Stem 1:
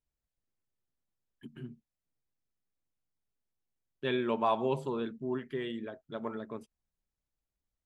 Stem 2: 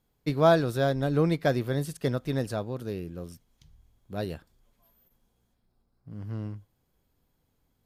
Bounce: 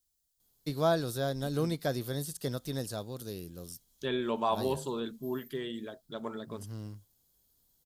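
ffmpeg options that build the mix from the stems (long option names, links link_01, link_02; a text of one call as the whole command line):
ffmpeg -i stem1.wav -i stem2.wav -filter_complex "[0:a]volume=-1dB[link_01];[1:a]adelay=400,volume=-7dB[link_02];[link_01][link_02]amix=inputs=2:normalize=0,acrossover=split=2500[link_03][link_04];[link_04]acompressor=threshold=-54dB:ratio=4:attack=1:release=60[link_05];[link_03][link_05]amix=inputs=2:normalize=0,aexciter=amount=6:drive=3.8:freq=3400" out.wav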